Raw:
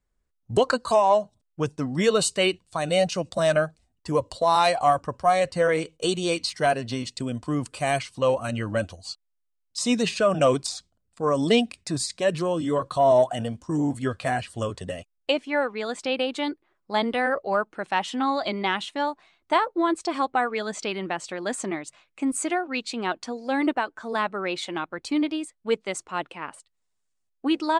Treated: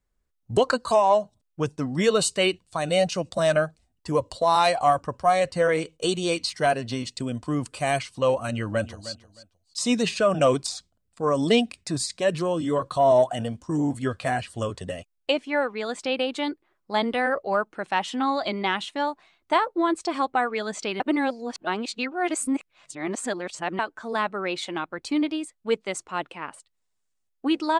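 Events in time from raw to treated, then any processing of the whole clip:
0:08.51–0:09.11: delay throw 310 ms, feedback 20%, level −14.5 dB
0:21.00–0:23.79: reverse

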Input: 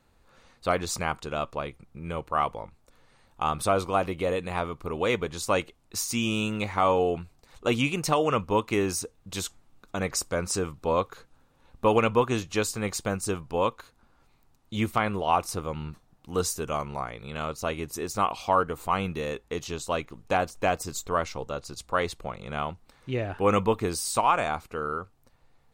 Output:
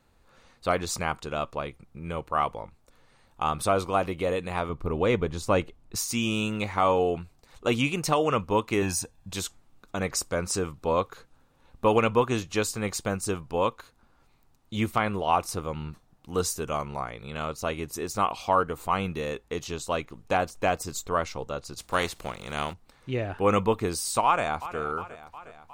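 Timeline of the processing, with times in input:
0:04.69–0:05.96: spectral tilt −2 dB per octave
0:08.82–0:09.33: comb filter 1.2 ms
0:21.77–0:22.72: compressing power law on the bin magnitudes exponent 0.63
0:24.25–0:24.79: delay throw 360 ms, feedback 65%, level −14.5 dB

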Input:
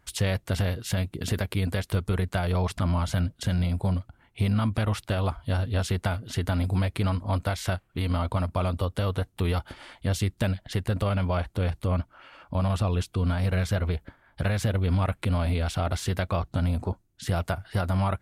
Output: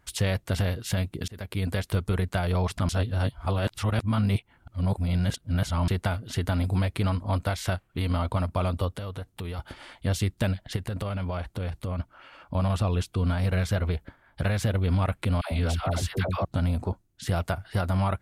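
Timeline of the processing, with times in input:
0:01.28–0:01.83: fade in equal-power
0:02.89–0:05.88: reverse
0:08.91–0:09.59: downward compressor 3 to 1, threshold −34 dBFS
0:10.76–0:12.00: downward compressor 5 to 1, threshold −27 dBFS
0:15.41–0:16.45: all-pass dispersion lows, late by 106 ms, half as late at 680 Hz

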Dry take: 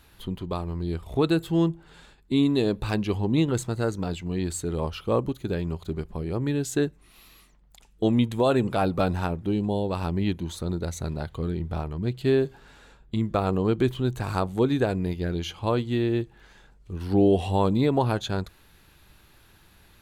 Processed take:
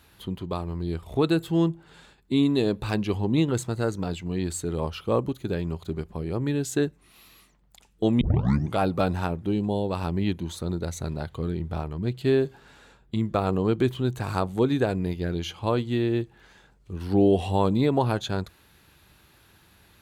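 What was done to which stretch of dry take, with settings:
0:08.21: tape start 0.57 s
whole clip: high-pass filter 60 Hz

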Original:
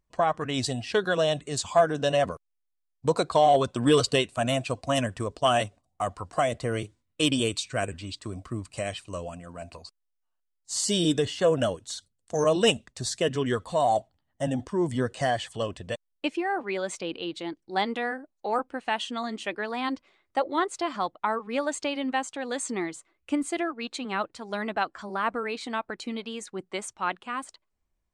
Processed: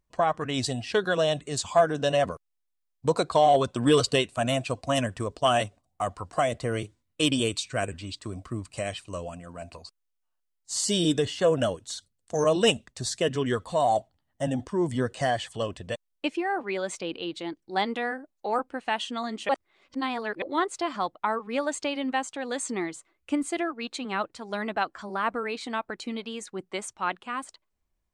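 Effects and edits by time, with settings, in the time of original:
0:19.49–0:20.42: reverse

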